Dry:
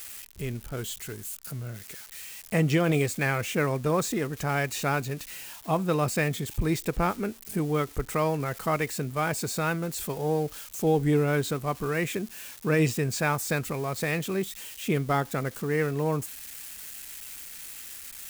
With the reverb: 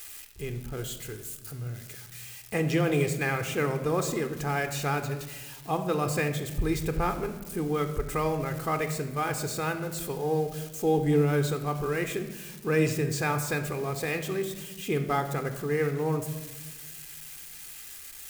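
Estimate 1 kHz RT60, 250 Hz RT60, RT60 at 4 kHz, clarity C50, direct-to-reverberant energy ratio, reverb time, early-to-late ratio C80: 1.1 s, 1.7 s, 0.85 s, 9.5 dB, 8.0 dB, 1.3 s, 12.0 dB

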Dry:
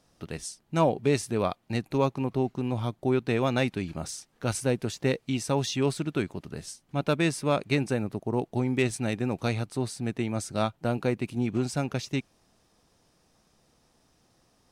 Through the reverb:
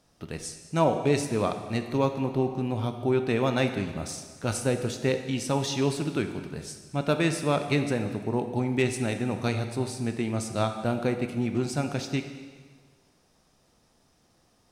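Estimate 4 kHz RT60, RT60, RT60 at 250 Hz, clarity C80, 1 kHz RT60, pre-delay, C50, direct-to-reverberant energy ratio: 1.5 s, 1.6 s, 1.6 s, 9.5 dB, 1.6 s, 7 ms, 8.0 dB, 6.5 dB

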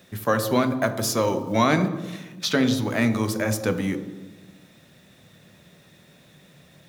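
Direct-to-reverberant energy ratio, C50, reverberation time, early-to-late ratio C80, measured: 8.0 dB, 10.5 dB, 1.2 s, 12.5 dB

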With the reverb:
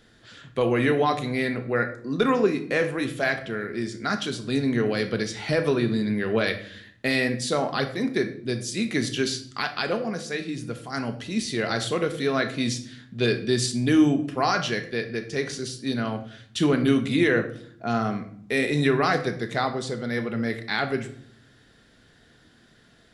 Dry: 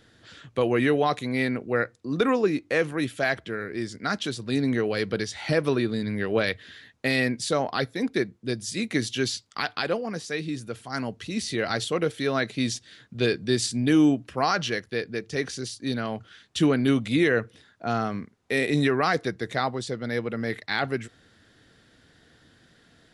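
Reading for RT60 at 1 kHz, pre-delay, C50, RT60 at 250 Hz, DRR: 0.55 s, 3 ms, 11.5 dB, 1.0 s, 6.0 dB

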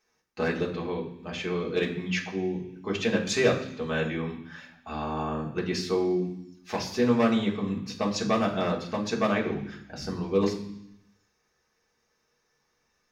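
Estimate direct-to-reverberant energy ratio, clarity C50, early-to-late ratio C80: -2.0 dB, 9.0 dB, 12.0 dB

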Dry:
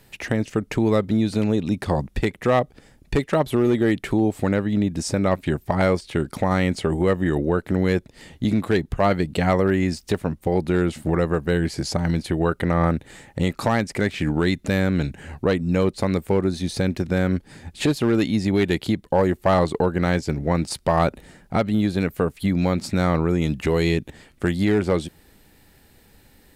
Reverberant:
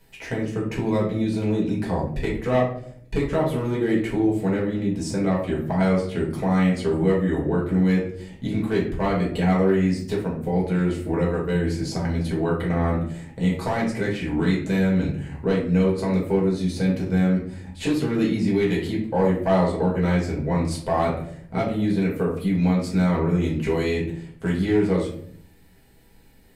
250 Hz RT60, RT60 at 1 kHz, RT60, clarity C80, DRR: 0.85 s, 0.50 s, 0.60 s, 10.0 dB, -5.5 dB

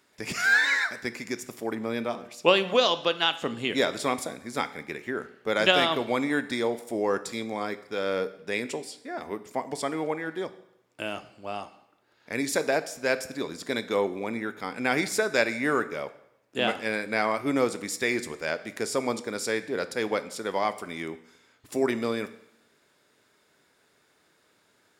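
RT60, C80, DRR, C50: 0.80 s, 17.5 dB, 12.0 dB, 15.0 dB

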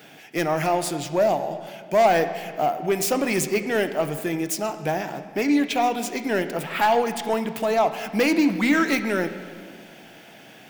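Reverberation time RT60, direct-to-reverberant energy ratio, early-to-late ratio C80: 1.8 s, 9.0 dB, 12.0 dB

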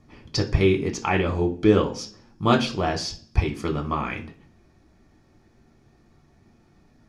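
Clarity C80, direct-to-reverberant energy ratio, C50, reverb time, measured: 18.5 dB, 2.0 dB, 14.0 dB, 0.45 s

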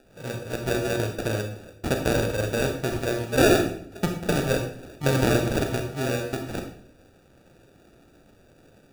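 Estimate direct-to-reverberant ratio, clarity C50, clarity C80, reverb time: 4.0 dB, 6.5 dB, 10.0 dB, 0.60 s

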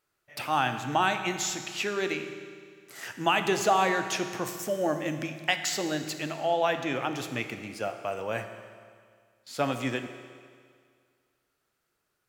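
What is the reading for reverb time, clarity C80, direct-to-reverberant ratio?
2.0 s, 9.5 dB, 7.0 dB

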